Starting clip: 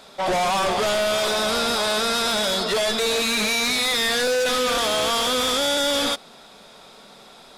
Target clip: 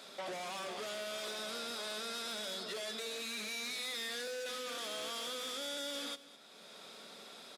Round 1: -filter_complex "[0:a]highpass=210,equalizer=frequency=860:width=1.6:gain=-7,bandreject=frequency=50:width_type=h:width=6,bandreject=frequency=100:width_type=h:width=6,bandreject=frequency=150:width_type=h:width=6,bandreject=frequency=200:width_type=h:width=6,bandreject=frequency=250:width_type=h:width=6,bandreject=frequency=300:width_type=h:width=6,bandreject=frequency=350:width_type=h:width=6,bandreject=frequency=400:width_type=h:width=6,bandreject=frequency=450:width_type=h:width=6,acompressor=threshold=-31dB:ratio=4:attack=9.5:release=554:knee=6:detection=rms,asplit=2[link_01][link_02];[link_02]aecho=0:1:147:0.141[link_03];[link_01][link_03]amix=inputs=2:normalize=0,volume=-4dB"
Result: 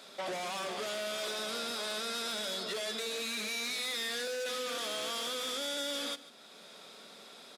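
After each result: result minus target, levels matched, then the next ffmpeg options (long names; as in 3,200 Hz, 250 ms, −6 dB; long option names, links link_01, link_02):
echo 64 ms early; downward compressor: peak gain reduction −4.5 dB
-filter_complex "[0:a]highpass=210,equalizer=frequency=860:width=1.6:gain=-7,bandreject=frequency=50:width_type=h:width=6,bandreject=frequency=100:width_type=h:width=6,bandreject=frequency=150:width_type=h:width=6,bandreject=frequency=200:width_type=h:width=6,bandreject=frequency=250:width_type=h:width=6,bandreject=frequency=300:width_type=h:width=6,bandreject=frequency=350:width_type=h:width=6,bandreject=frequency=400:width_type=h:width=6,bandreject=frequency=450:width_type=h:width=6,acompressor=threshold=-31dB:ratio=4:attack=9.5:release=554:knee=6:detection=rms,asplit=2[link_01][link_02];[link_02]aecho=0:1:211:0.141[link_03];[link_01][link_03]amix=inputs=2:normalize=0,volume=-4dB"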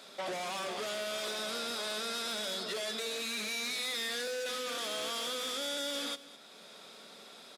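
downward compressor: peak gain reduction −4.5 dB
-filter_complex "[0:a]highpass=210,equalizer=frequency=860:width=1.6:gain=-7,bandreject=frequency=50:width_type=h:width=6,bandreject=frequency=100:width_type=h:width=6,bandreject=frequency=150:width_type=h:width=6,bandreject=frequency=200:width_type=h:width=6,bandreject=frequency=250:width_type=h:width=6,bandreject=frequency=300:width_type=h:width=6,bandreject=frequency=350:width_type=h:width=6,bandreject=frequency=400:width_type=h:width=6,bandreject=frequency=450:width_type=h:width=6,acompressor=threshold=-37dB:ratio=4:attack=9.5:release=554:knee=6:detection=rms,asplit=2[link_01][link_02];[link_02]aecho=0:1:211:0.141[link_03];[link_01][link_03]amix=inputs=2:normalize=0,volume=-4dB"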